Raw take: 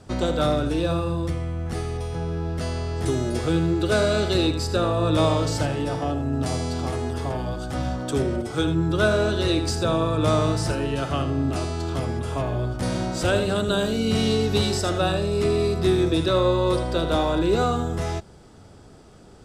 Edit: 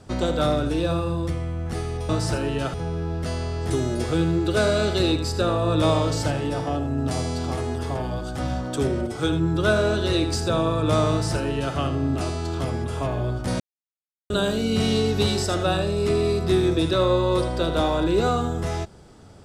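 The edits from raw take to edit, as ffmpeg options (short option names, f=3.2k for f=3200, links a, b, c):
-filter_complex "[0:a]asplit=5[a][b][c][d][e];[a]atrim=end=2.092[f];[b]atrim=start=10.458:end=11.112[g];[c]atrim=start=2.088:end=12.95,asetpts=PTS-STARTPTS,afade=t=out:st=10.858:d=0.004:c=hsin[h];[d]atrim=start=12.95:end=13.65,asetpts=PTS-STARTPTS,volume=0[i];[e]atrim=start=13.65,asetpts=PTS-STARTPTS,afade=t=in:d=0.004:c=hsin[j];[f][g]acrossfade=d=0.004:c1=hsin:c2=hsin[k];[h][i][j]concat=n=3:v=0:a=1[l];[k][l]acrossfade=d=0.004:c1=hsin:c2=hsin"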